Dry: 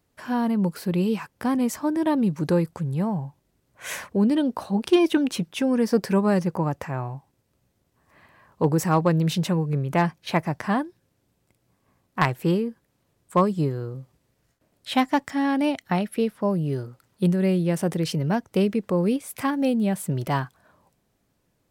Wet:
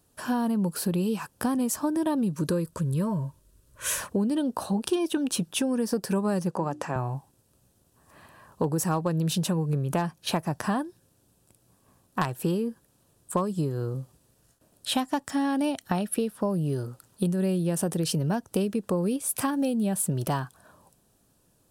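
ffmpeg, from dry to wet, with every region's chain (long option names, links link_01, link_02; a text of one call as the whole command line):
ffmpeg -i in.wav -filter_complex "[0:a]asettb=1/sr,asplit=3[link_01][link_02][link_03];[link_01]atrim=end=2.354[link_04];[link_02]atrim=start=2.35:end=4.01,asetpts=PTS-STARTPTS,afade=type=in:duration=0.004:curve=qsin,afade=type=out:start_time=1.656:duration=0.004:curve=qsin,asubboost=boost=12:cutoff=75,asuperstop=centerf=770:order=20:qfactor=3.4[link_05];[link_03]atrim=start=4.006[link_06];[link_04][link_05]acrossfade=duration=0.004:curve1=hsin:curve2=qsin[link_07];[link_07][link_06]acrossfade=duration=0.004:curve1=qsin:curve2=hsin,asettb=1/sr,asplit=3[link_08][link_09][link_10];[link_08]atrim=end=6.514[link_11];[link_09]atrim=start=6.51:end=6.96,asetpts=PTS-STARTPTS,afade=type=in:duration=0.004:curve=qsin,afade=type=out:start_time=0.446:duration=0.004:curve=qsin,highpass=200,lowpass=7900,bandreject=frequency=60:width_type=h:width=6,bandreject=frequency=120:width_type=h:width=6,bandreject=frequency=180:width_type=h:width=6,bandreject=frequency=240:width_type=h:width=6,bandreject=frequency=300:width_type=h:width=6,bandreject=frequency=360:width_type=h:width=6[link_12];[link_10]atrim=start=6.956[link_13];[link_11][link_12]acrossfade=duration=0.004:curve1=hsin:curve2=qsin[link_14];[link_14][link_13]acrossfade=duration=0.004:curve1=qsin:curve2=hsin,equalizer=frequency=10000:width=0.98:gain=10,acompressor=threshold=-27dB:ratio=6,equalizer=frequency=2100:width=5.8:gain=-13,volume=3.5dB" out.wav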